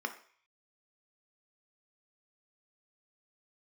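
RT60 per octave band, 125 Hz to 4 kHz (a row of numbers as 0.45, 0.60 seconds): 0.60, 0.35, 0.45, 0.55, 0.60, 0.55 seconds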